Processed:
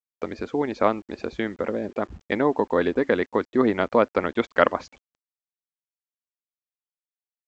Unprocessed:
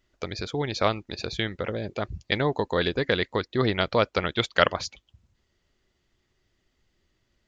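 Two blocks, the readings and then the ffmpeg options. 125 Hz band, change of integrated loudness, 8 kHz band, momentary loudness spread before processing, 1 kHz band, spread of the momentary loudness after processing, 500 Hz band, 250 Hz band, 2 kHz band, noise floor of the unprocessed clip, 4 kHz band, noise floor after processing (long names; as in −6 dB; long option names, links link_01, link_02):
−6.5 dB, +2.5 dB, can't be measured, 10 LU, +3.0 dB, 10 LU, +4.0 dB, +5.5 dB, −1.0 dB, −74 dBFS, −11.5 dB, below −85 dBFS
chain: -af "equalizer=frequency=125:width_type=o:width=1:gain=-10,equalizer=frequency=250:width_type=o:width=1:gain=12,equalizer=frequency=500:width_type=o:width=1:gain=4,equalizer=frequency=1000:width_type=o:width=1:gain=7,equalizer=frequency=2000:width_type=o:width=1:gain=5,equalizer=frequency=4000:width_type=o:width=1:gain=-5,aresample=16000,acrusher=bits=7:mix=0:aa=0.000001,aresample=44100,highshelf=frequency=2400:gain=-9.5,volume=-3dB"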